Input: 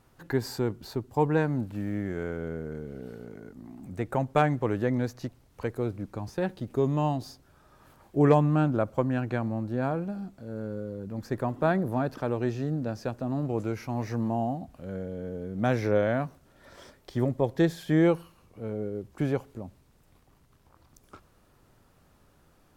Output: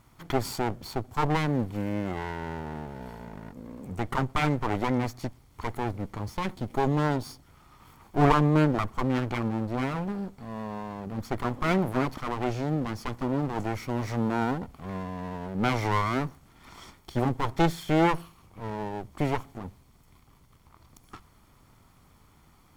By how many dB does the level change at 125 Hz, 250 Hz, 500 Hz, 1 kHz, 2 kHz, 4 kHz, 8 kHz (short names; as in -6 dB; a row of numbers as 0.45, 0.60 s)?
0.0 dB, 0.0 dB, -3.0 dB, +4.0 dB, +3.0 dB, +6.5 dB, n/a